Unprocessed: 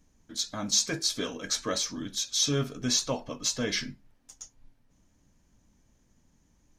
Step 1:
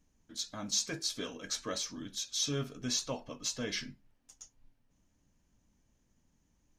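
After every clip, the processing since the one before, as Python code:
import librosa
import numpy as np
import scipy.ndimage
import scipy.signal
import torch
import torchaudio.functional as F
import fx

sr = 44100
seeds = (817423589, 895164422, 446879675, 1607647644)

y = fx.peak_eq(x, sr, hz=2800.0, db=3.0, octaves=0.27)
y = y * librosa.db_to_amplitude(-7.0)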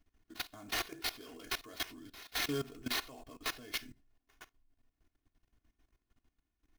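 y = fx.sample_hold(x, sr, seeds[0], rate_hz=8100.0, jitter_pct=20)
y = y + 0.67 * np.pad(y, (int(2.8 * sr / 1000.0), 0))[:len(y)]
y = fx.level_steps(y, sr, step_db=17)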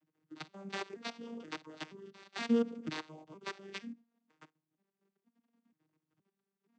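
y = fx.vocoder_arp(x, sr, chord='major triad', root=51, every_ms=476)
y = y * librosa.db_to_amplitude(3.0)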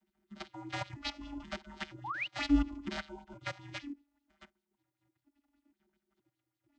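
y = fx.band_invert(x, sr, width_hz=500)
y = fx.spec_paint(y, sr, seeds[1], shape='rise', start_s=2.04, length_s=0.23, low_hz=770.0, high_hz=3100.0, level_db=-40.0)
y = fx.bell_lfo(y, sr, hz=5.1, low_hz=360.0, high_hz=4200.0, db=9)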